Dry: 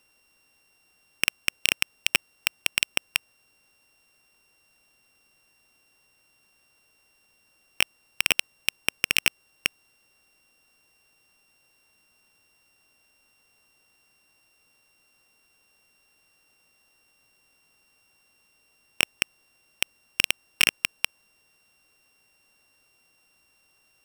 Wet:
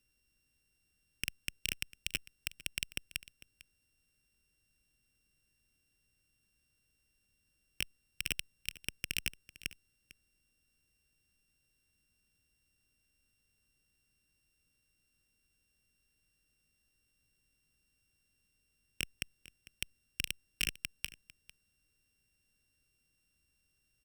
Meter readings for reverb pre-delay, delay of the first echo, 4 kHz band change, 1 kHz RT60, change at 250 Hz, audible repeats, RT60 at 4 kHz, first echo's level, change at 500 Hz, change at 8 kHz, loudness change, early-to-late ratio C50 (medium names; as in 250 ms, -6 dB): no reverb, 450 ms, -14.0 dB, no reverb, -9.5 dB, 1, no reverb, -19.0 dB, -16.5 dB, -12.0 dB, -14.0 dB, no reverb